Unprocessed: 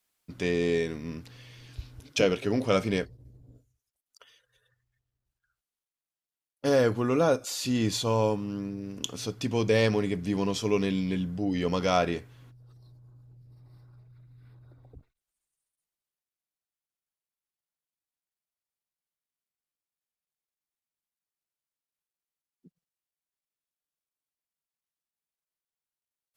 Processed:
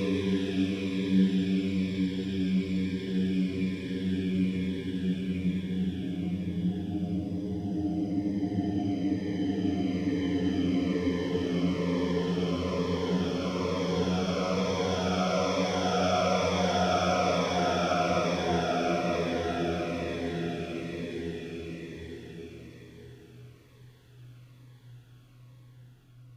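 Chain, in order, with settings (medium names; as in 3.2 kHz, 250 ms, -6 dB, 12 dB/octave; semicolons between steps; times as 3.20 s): Paulstretch 16×, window 0.50 s, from 10.89 s; Shepard-style phaser falling 1.1 Hz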